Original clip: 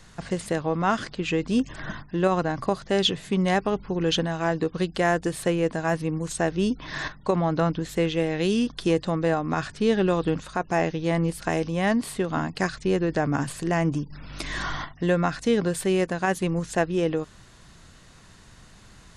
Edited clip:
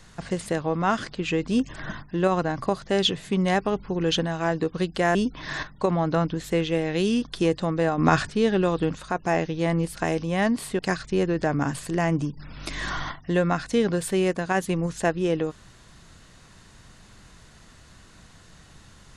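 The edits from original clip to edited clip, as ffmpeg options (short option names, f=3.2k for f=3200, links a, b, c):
-filter_complex "[0:a]asplit=5[a][b][c][d][e];[a]atrim=end=5.152[f];[b]atrim=start=6.598:end=9.432[g];[c]atrim=start=9.428:end=9.752,asetpts=PTS-STARTPTS,volume=7.5dB[h];[d]atrim=start=9.748:end=12.242[i];[e]atrim=start=12.518[j];[f][g]acrossfade=d=0.004:c1=hsin:c2=hsin[k];[k][h]acrossfade=d=0.004:c1=hsin:c2=hsin[l];[l][i]acrossfade=d=0.004:c1=hsin:c2=hsin[m];[m][j]acrossfade=d=0.004:c1=hsin:c2=hsin"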